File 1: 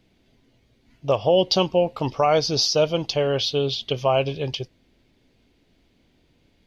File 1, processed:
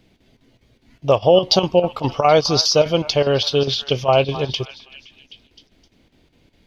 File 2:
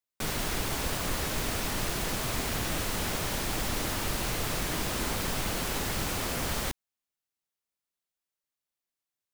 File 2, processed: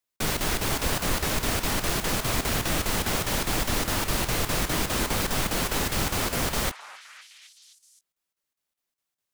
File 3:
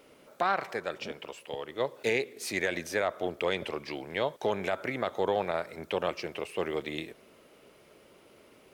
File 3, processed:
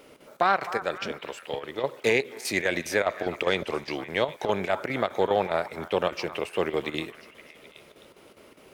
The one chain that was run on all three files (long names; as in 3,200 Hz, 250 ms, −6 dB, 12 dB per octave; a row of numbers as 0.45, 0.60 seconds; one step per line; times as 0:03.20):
square-wave tremolo 4.9 Hz, depth 65%, duty 80%
echo through a band-pass that steps 259 ms, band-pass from 1,100 Hz, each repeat 0.7 octaves, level −10.5 dB
level +5.5 dB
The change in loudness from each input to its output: +4.5, +4.5, +4.5 LU